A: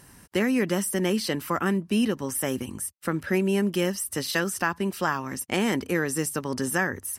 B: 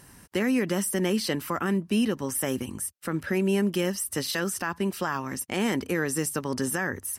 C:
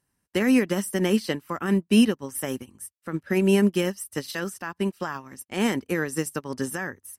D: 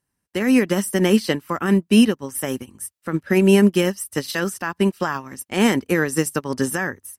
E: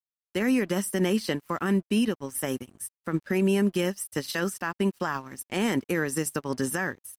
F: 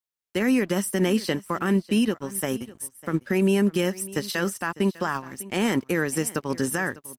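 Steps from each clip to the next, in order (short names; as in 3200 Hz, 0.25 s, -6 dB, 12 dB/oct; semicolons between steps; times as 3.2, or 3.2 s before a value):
limiter -16 dBFS, peak gain reduction 6 dB
upward expander 2.5:1, over -43 dBFS; gain +8 dB
AGC gain up to 10.5 dB; gain -2.5 dB
limiter -12 dBFS, peak gain reduction 8 dB; crossover distortion -50.5 dBFS; gain -4 dB
echo 0.601 s -19 dB; gain +2.5 dB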